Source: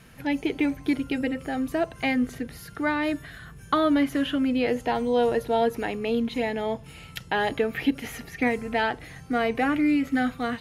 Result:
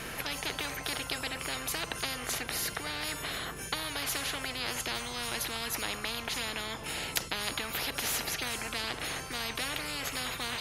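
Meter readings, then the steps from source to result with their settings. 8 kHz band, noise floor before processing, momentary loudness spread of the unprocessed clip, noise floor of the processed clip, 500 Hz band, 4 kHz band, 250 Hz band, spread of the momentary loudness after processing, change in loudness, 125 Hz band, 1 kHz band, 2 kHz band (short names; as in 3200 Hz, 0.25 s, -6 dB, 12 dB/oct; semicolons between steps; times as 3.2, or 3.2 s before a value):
+13.0 dB, -46 dBFS, 11 LU, -42 dBFS, -15.5 dB, +4.5 dB, -20.0 dB, 3 LU, -7.5 dB, -4.0 dB, -9.5 dB, -4.0 dB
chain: spectral compressor 10:1; gain +3.5 dB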